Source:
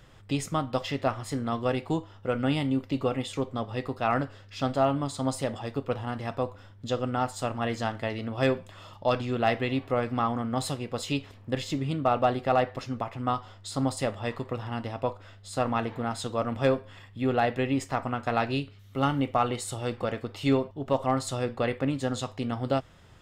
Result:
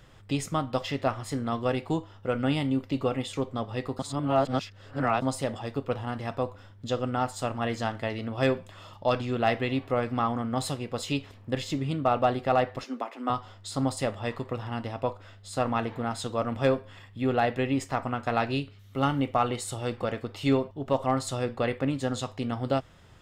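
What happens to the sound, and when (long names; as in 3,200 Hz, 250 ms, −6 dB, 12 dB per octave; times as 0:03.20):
0:03.99–0:05.22: reverse
0:12.84–0:13.30: Chebyshev high-pass filter 240 Hz, order 5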